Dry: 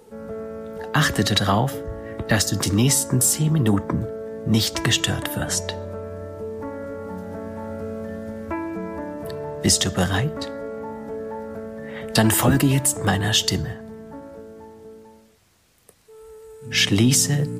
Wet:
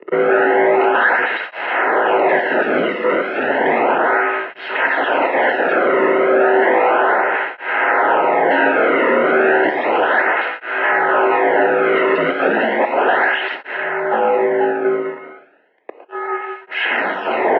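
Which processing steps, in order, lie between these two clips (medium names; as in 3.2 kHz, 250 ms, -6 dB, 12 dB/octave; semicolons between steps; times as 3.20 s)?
hum notches 50/100/150/200/250/300/350/400/450 Hz; waveshaping leveller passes 5; speakerphone echo 110 ms, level -16 dB; sine folder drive 12 dB, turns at -4.5 dBFS; comb of notches 1.2 kHz; gated-style reverb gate 160 ms rising, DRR 7 dB; reverse; upward compressor, threshold -21 dBFS; reverse; mistuned SSB -56 Hz 360–2400 Hz; cancelling through-zero flanger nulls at 0.33 Hz, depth 1.3 ms; trim -1 dB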